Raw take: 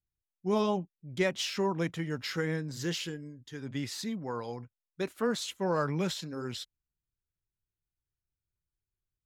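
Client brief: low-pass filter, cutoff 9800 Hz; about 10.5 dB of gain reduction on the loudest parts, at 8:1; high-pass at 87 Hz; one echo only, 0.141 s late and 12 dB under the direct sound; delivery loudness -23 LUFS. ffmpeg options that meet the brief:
-af "highpass=87,lowpass=9.8k,acompressor=threshold=-34dB:ratio=8,aecho=1:1:141:0.251,volume=16.5dB"

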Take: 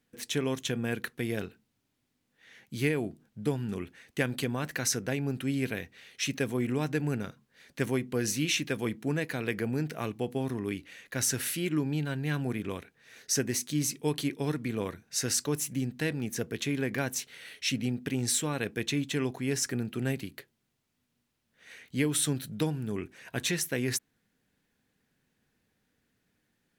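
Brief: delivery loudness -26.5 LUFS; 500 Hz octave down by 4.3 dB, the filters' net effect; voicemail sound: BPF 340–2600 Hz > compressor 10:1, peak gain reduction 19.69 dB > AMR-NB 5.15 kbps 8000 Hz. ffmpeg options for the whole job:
-af "highpass=340,lowpass=2.6k,equalizer=f=500:t=o:g=-3.5,acompressor=threshold=-46dB:ratio=10,volume=26.5dB" -ar 8000 -c:a libopencore_amrnb -b:a 5150

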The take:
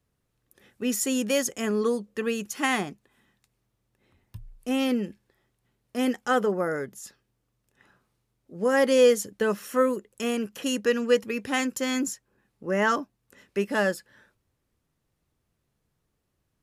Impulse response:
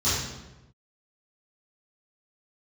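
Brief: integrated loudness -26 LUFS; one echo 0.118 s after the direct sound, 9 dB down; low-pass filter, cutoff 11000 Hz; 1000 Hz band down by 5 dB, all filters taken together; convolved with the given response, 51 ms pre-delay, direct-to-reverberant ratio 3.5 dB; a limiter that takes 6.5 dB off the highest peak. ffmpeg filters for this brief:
-filter_complex "[0:a]lowpass=11k,equalizer=f=1k:t=o:g=-7,alimiter=limit=-17dB:level=0:latency=1,aecho=1:1:118:0.355,asplit=2[a][b];[1:a]atrim=start_sample=2205,adelay=51[c];[b][c]afir=irnorm=-1:irlink=0,volume=-17dB[d];[a][d]amix=inputs=2:normalize=0,volume=-0.5dB"

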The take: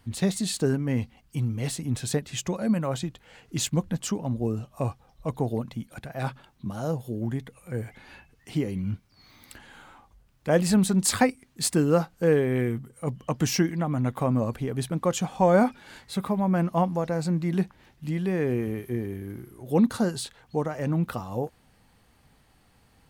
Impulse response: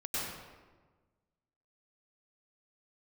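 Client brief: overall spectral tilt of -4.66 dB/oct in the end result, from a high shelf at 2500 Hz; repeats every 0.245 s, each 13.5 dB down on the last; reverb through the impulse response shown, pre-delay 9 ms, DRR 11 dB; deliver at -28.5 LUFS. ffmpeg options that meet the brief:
-filter_complex "[0:a]highshelf=f=2.5k:g=6.5,aecho=1:1:245|490:0.211|0.0444,asplit=2[a][b];[1:a]atrim=start_sample=2205,adelay=9[c];[b][c]afir=irnorm=-1:irlink=0,volume=-16dB[d];[a][d]amix=inputs=2:normalize=0,volume=-3dB"

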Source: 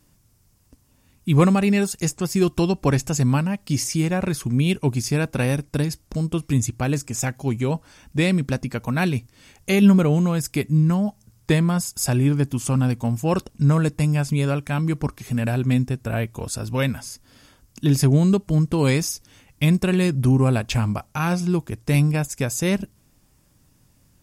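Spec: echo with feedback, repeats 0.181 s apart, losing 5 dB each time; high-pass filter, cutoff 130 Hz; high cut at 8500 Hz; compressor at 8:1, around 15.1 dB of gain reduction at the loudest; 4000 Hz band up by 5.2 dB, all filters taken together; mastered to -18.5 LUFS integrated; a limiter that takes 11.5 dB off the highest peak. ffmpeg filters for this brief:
-af "highpass=130,lowpass=8.5k,equalizer=f=4k:t=o:g=7,acompressor=threshold=-27dB:ratio=8,alimiter=limit=-24dB:level=0:latency=1,aecho=1:1:181|362|543|724|905|1086|1267:0.562|0.315|0.176|0.0988|0.0553|0.031|0.0173,volume=14dB"

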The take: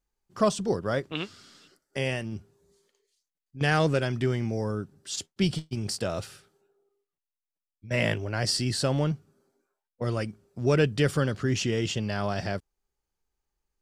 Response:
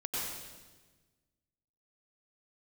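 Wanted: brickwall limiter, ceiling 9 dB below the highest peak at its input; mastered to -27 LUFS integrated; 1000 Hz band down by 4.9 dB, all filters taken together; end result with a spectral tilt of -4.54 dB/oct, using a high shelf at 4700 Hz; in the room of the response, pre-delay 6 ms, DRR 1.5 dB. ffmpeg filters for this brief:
-filter_complex "[0:a]equalizer=f=1k:t=o:g=-7.5,highshelf=f=4.7k:g=7.5,alimiter=limit=-18.5dB:level=0:latency=1,asplit=2[a][b];[1:a]atrim=start_sample=2205,adelay=6[c];[b][c]afir=irnorm=-1:irlink=0,volume=-6dB[d];[a][d]amix=inputs=2:normalize=0,volume=1.5dB"

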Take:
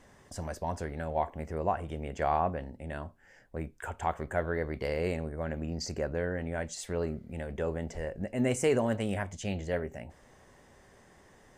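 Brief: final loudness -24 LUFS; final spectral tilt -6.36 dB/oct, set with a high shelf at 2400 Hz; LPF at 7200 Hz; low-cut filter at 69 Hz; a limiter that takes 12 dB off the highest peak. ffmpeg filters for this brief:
-af "highpass=69,lowpass=7.2k,highshelf=f=2.4k:g=-6,volume=16dB,alimiter=limit=-11.5dB:level=0:latency=1"

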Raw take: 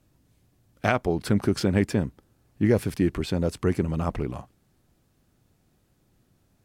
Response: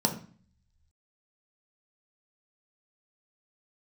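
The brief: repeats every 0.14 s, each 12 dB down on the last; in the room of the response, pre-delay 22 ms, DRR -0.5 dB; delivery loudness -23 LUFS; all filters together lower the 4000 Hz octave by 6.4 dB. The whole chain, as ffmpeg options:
-filter_complex "[0:a]equalizer=f=4k:t=o:g=-8.5,aecho=1:1:140|280|420:0.251|0.0628|0.0157,asplit=2[a][b];[1:a]atrim=start_sample=2205,adelay=22[c];[b][c]afir=irnorm=-1:irlink=0,volume=-9dB[d];[a][d]amix=inputs=2:normalize=0,volume=-5dB"

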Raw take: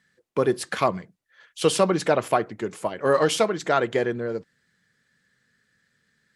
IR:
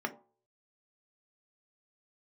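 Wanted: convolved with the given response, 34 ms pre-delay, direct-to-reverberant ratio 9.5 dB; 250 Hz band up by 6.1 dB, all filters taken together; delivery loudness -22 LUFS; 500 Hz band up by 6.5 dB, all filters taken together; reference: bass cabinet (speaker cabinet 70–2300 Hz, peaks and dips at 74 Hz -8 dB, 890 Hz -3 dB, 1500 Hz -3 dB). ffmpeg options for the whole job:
-filter_complex "[0:a]equalizer=f=250:t=o:g=6,equalizer=f=500:t=o:g=6.5,asplit=2[a][b];[1:a]atrim=start_sample=2205,adelay=34[c];[b][c]afir=irnorm=-1:irlink=0,volume=-14.5dB[d];[a][d]amix=inputs=2:normalize=0,highpass=f=70:w=0.5412,highpass=f=70:w=1.3066,equalizer=f=74:t=q:w=4:g=-8,equalizer=f=890:t=q:w=4:g=-3,equalizer=f=1.5k:t=q:w=4:g=-3,lowpass=f=2.3k:w=0.5412,lowpass=f=2.3k:w=1.3066,volume=-3.5dB"

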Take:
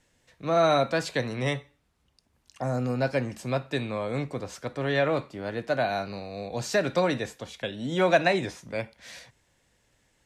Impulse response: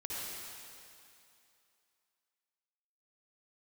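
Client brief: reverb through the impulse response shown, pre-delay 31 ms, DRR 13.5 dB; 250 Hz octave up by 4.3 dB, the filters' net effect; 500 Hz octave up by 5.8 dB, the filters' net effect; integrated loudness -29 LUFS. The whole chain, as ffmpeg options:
-filter_complex "[0:a]equalizer=f=250:t=o:g=3.5,equalizer=f=500:t=o:g=6.5,asplit=2[a][b];[1:a]atrim=start_sample=2205,adelay=31[c];[b][c]afir=irnorm=-1:irlink=0,volume=-16dB[d];[a][d]amix=inputs=2:normalize=0,volume=-5.5dB"

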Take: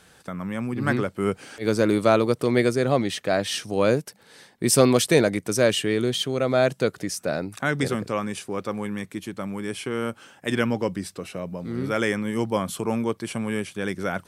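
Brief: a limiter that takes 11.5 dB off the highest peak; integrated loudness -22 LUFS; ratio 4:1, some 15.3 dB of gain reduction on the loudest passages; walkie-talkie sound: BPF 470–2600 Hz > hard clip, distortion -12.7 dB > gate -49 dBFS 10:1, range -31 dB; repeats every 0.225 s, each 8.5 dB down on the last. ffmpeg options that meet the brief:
-af "acompressor=threshold=-31dB:ratio=4,alimiter=level_in=2dB:limit=-24dB:level=0:latency=1,volume=-2dB,highpass=470,lowpass=2.6k,aecho=1:1:225|450|675|900:0.376|0.143|0.0543|0.0206,asoftclip=type=hard:threshold=-37dB,agate=range=-31dB:threshold=-49dB:ratio=10,volume=21.5dB"

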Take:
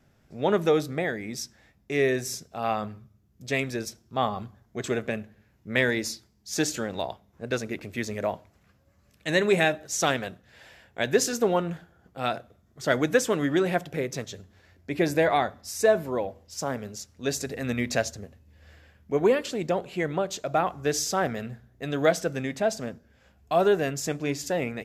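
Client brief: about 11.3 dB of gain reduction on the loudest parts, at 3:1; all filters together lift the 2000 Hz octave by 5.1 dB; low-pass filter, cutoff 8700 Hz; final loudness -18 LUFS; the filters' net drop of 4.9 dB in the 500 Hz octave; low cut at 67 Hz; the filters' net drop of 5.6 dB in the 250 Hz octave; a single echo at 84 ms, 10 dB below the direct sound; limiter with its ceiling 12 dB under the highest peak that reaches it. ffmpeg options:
-af "highpass=67,lowpass=8.7k,equalizer=f=250:t=o:g=-6,equalizer=f=500:t=o:g=-5,equalizer=f=2k:t=o:g=6.5,acompressor=threshold=-32dB:ratio=3,alimiter=level_in=2dB:limit=-24dB:level=0:latency=1,volume=-2dB,aecho=1:1:84:0.316,volume=20dB"

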